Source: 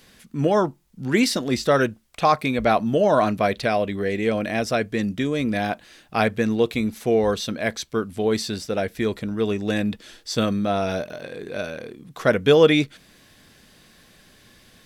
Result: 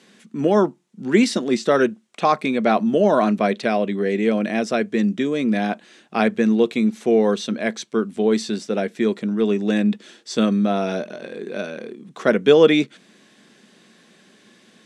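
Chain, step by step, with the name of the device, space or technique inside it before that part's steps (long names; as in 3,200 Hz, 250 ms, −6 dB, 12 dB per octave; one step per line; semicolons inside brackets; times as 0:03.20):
television speaker (loudspeaker in its box 170–8,900 Hz, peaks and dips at 210 Hz +7 dB, 380 Hz +6 dB, 4,800 Hz −4 dB)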